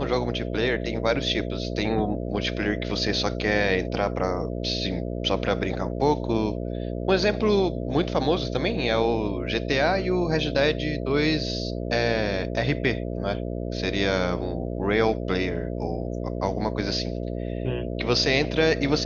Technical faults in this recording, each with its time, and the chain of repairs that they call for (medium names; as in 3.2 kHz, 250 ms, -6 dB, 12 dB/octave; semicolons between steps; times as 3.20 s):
buzz 60 Hz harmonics 11 -30 dBFS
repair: de-hum 60 Hz, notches 11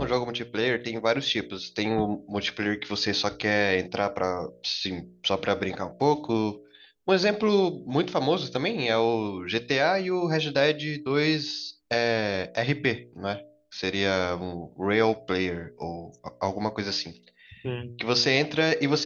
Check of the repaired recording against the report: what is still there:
nothing left